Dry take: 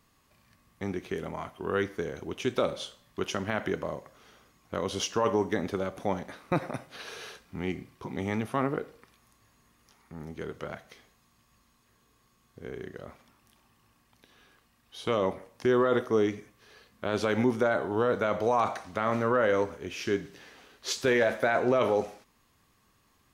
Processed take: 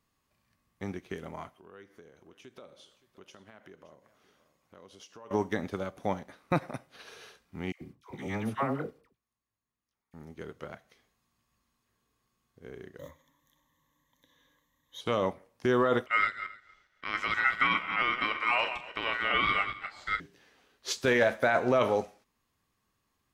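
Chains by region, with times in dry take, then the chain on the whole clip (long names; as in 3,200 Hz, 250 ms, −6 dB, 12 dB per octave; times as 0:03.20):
0:01.54–0:05.31: downward compressor 2.5 to 1, threshold −46 dBFS + low-shelf EQ 87 Hz −9 dB + single-tap delay 570 ms −15.5 dB
0:07.72–0:10.14: noise gate −59 dBFS, range −16 dB + all-pass dispersion lows, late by 91 ms, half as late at 830 Hz
0:12.99–0:15.01: one scale factor per block 5 bits + EQ curve with evenly spaced ripples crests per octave 1.1, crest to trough 17 dB
0:16.06–0:20.20: feedback delay that plays each chunk backwards 136 ms, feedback 44%, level −7 dB + low-pass filter 2,700 Hz 6 dB per octave + ring modulation 1,700 Hz
whole clip: dynamic equaliser 380 Hz, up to −4 dB, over −36 dBFS, Q 1.8; expander for the loud parts 1.5 to 1, over −49 dBFS; level +2 dB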